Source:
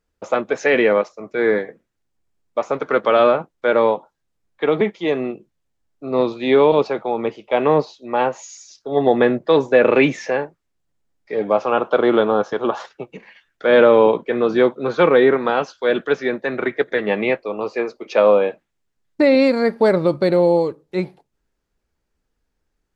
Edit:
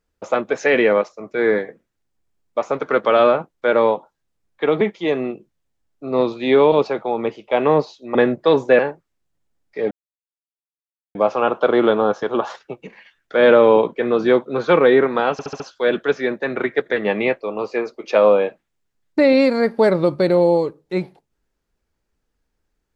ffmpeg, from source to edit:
-filter_complex "[0:a]asplit=8[s0][s1][s2][s3][s4][s5][s6][s7];[s0]atrim=end=8.152[s8];[s1]atrim=start=9.178:end=9.822[s9];[s2]atrim=start=10.328:end=11.45,asetpts=PTS-STARTPTS,afade=t=out:st=1.118:d=0.004:c=hsin,apad=pad_dur=1.24[s10];[s3]atrim=start=11.45:end=15.692,asetpts=PTS-STARTPTS,afade=t=in:d=0.004:c=hsin[s11];[s4]atrim=start=15.618:end=15.692[s12];[s5]atrim=start=15.618:end=15.692[s13];[s6]atrim=start=15.618:end=15.692[s14];[s7]atrim=start=15.618[s15];[s8][s9]acrossfade=d=0.004:c1=hsin:c2=hsin[s16];[s10][s11]concat=n=2:v=0:a=1[s17];[s16][s17]acrossfade=d=0.004:c1=hsin:c2=hsin[s18];[s18][s12]acrossfade=d=0.004:c1=hsin:c2=hsin[s19];[s19][s13]acrossfade=d=0.004:c1=hsin:c2=hsin[s20];[s20][s14]acrossfade=d=0.004:c1=hsin:c2=hsin[s21];[s21][s15]acrossfade=d=0.004:c1=hsin:c2=hsin"

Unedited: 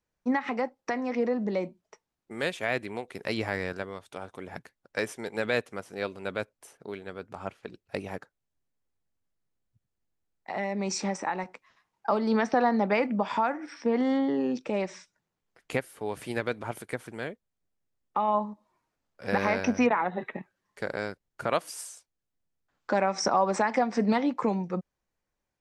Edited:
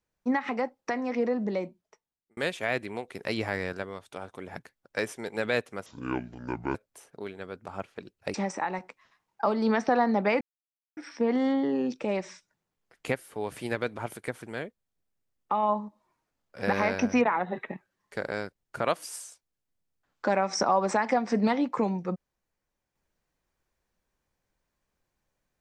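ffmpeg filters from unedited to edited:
-filter_complex "[0:a]asplit=7[s0][s1][s2][s3][s4][s5][s6];[s0]atrim=end=2.37,asetpts=PTS-STARTPTS,afade=t=out:st=1.46:d=0.91[s7];[s1]atrim=start=2.37:end=5.864,asetpts=PTS-STARTPTS,afade=t=in:d=0.004:c=hsin[s8];[s2]atrim=start=5.86:end=6.42,asetpts=PTS-STARTPTS,asetrate=27783,aresample=44100[s9];[s3]atrim=start=6.416:end=8.012[s10];[s4]atrim=start=10.988:end=13.06,asetpts=PTS-STARTPTS,afade=t=out:st=2.068:d=0.004:c=hsin[s11];[s5]atrim=start=13.06:end=13.62,asetpts=PTS-STARTPTS,volume=0[s12];[s6]atrim=start=13.62,asetpts=PTS-STARTPTS,afade=t=in:d=0.004:c=hsin[s13];[s7][s8]concat=n=2:v=0:a=1[s14];[s14][s9]acrossfade=d=0.004:c1=hsin:c2=hsin[s15];[s15][s10]acrossfade=d=0.004:c1=hsin:c2=hsin[s16];[s11][s12][s13]concat=n=3:v=0:a=1[s17];[s16][s17]acrossfade=d=0.004:c1=hsin:c2=hsin"

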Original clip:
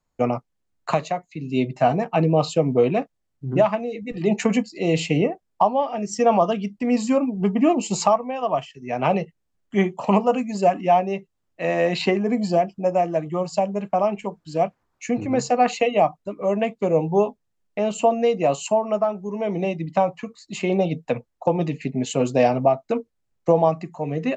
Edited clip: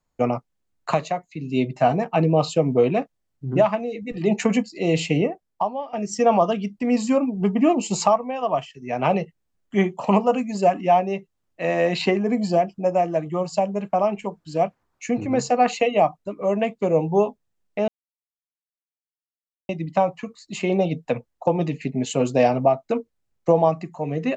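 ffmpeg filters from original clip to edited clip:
-filter_complex "[0:a]asplit=4[s0][s1][s2][s3];[s0]atrim=end=5.93,asetpts=PTS-STARTPTS,afade=t=out:st=5.11:d=0.82:silence=0.266073[s4];[s1]atrim=start=5.93:end=17.88,asetpts=PTS-STARTPTS,afade=t=in:d=0.004:c=hsin:silence=0.266073,afade=t=out:st=11.946:d=0.004:c=hsin[s5];[s2]atrim=start=17.88:end=19.69,asetpts=PTS-STARTPTS,volume=0[s6];[s3]atrim=start=19.69,asetpts=PTS-STARTPTS,afade=t=in:d=0.004:c=hsin[s7];[s4][s5][s6][s7]concat=n=4:v=0:a=1"

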